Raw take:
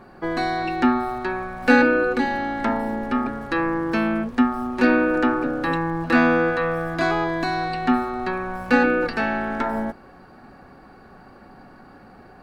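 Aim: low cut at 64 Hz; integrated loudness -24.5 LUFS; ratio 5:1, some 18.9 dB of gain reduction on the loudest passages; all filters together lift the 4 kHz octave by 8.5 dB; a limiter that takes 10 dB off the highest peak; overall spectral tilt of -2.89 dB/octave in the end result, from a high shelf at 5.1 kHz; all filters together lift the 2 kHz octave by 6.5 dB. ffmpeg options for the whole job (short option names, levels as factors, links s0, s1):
-af "highpass=64,equalizer=f=2000:t=o:g=8,equalizer=f=4000:t=o:g=9,highshelf=f=5100:g=-3.5,acompressor=threshold=0.0316:ratio=5,volume=2.66,alimiter=limit=0.168:level=0:latency=1"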